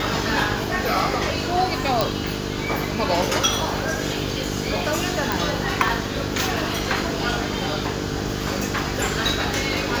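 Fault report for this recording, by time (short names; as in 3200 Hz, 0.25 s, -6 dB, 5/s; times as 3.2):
buzz 50 Hz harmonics 9 -29 dBFS
2.01 pop
5.32 pop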